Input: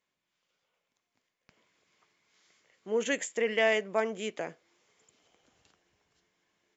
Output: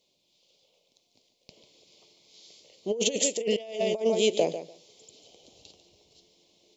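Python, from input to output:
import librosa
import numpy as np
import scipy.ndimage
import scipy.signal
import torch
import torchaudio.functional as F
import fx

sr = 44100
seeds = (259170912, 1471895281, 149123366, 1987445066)

p1 = x + fx.echo_feedback(x, sr, ms=146, feedback_pct=16, wet_db=-12, dry=0)
p2 = fx.over_compress(p1, sr, threshold_db=-33.0, ratio=-0.5)
p3 = fx.curve_eq(p2, sr, hz=(250.0, 370.0, 580.0, 950.0, 1600.0, 2400.0, 4100.0, 6300.0, 9900.0), db=(0, 4, 5, -7, -29, -3, 11, 4, -2))
y = F.gain(torch.from_numpy(p3), 5.0).numpy()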